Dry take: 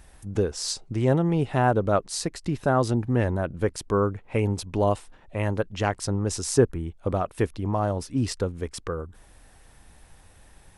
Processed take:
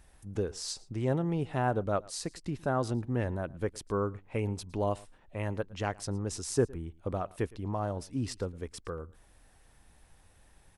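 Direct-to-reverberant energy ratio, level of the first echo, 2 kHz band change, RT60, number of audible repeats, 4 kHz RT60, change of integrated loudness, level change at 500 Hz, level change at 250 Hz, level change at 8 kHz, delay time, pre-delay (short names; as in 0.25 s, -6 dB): none, -23.0 dB, -8.0 dB, none, 1, none, -8.0 dB, -8.0 dB, -8.0 dB, -8.0 dB, 0.112 s, none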